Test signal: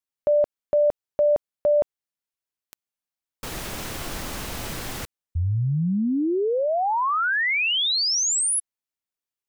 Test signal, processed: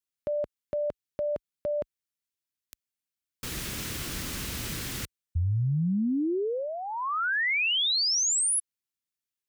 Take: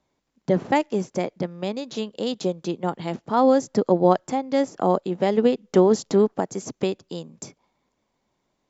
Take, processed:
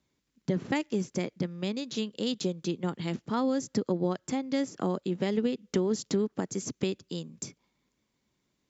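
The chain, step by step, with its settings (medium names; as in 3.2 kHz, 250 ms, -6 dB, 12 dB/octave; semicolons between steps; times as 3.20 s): high-pass 41 Hz; peaking EQ 740 Hz -12.5 dB 1.4 oct; compression 5:1, threshold -24 dBFS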